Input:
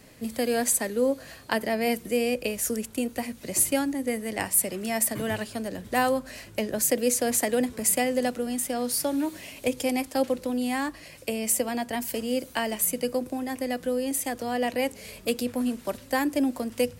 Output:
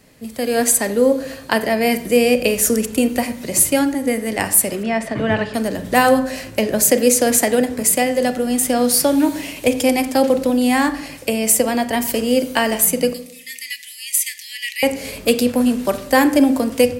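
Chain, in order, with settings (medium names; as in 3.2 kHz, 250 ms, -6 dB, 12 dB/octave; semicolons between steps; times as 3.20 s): 4.83–5.54 s: low-pass 2.9 kHz 12 dB/octave; level rider gain up to 13 dB; 13.13–14.83 s: steep high-pass 1.9 kHz 96 dB/octave; reverberation RT60 0.75 s, pre-delay 32 ms, DRR 10 dB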